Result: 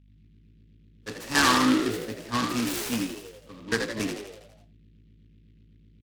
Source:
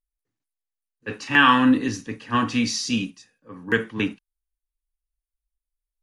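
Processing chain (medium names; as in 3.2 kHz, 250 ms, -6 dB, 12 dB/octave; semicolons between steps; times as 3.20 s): hum 50 Hz, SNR 26 dB; frequency-shifting echo 82 ms, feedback 56%, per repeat +58 Hz, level -5.5 dB; delay time shaken by noise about 2.6 kHz, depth 0.072 ms; trim -6 dB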